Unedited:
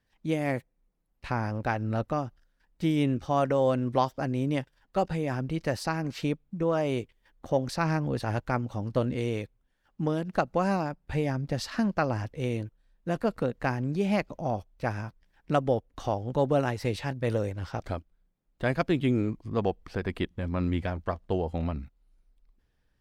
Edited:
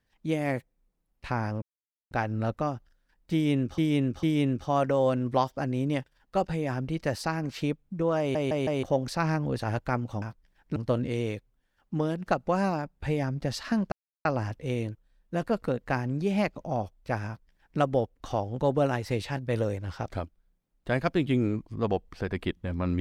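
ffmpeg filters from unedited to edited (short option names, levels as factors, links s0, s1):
-filter_complex "[0:a]asplit=11[s0][s1][s2][s3][s4][s5][s6][s7][s8][s9][s10];[s0]atrim=end=1.62,asetpts=PTS-STARTPTS,afade=t=out:st=1.616:d=0.004:c=hsin,apad=pad_dur=0.49[s11];[s1]atrim=start=1.62:end=3.292,asetpts=PTS-STARTPTS,afade=t=in:d=0.004:c=hsin[s12];[s2]atrim=start=2.838:end=3.292[s13];[s3]atrim=start=2.838:end=6.962[s14];[s4]atrim=start=6.798:end=6.962[s15];[s5]atrim=start=6.798:end=6.962[s16];[s6]atrim=start=6.798:end=6.962[s17];[s7]atrim=start=7.438:end=8.832[s18];[s8]atrim=start=14.998:end=15.542[s19];[s9]atrim=start=8.828:end=11.99,asetpts=PTS-STARTPTS,afade=t=out:st=3.158:d=0.004:c=hsin,apad=pad_dur=0.33[s20];[s10]atrim=start=11.99,asetpts=PTS-STARTPTS,afade=t=in:d=0.004:c=hsin[s21];[s11][s12]concat=n=2:v=0:a=1[s22];[s22][s13]acrossfade=d=0.004:c1=hsin:c2=hsin[s23];[s23][s14]acrossfade=d=0.004:c1=hsin:c2=hsin[s24];[s24][s15]acrossfade=d=0.004:c1=hsin:c2=hsin[s25];[s25][s16]acrossfade=d=0.004:c1=hsin:c2=hsin[s26];[s26][s17]acrossfade=d=0.004:c1=hsin:c2=hsin[s27];[s27][s18]acrossfade=d=0.004:c1=hsin:c2=hsin[s28];[s28][s19]acrossfade=d=0.004:c1=hsin:c2=hsin[s29];[s20][s21]concat=n=2:v=0:a=1[s30];[s29][s30]acrossfade=d=0.004:c1=hsin:c2=hsin"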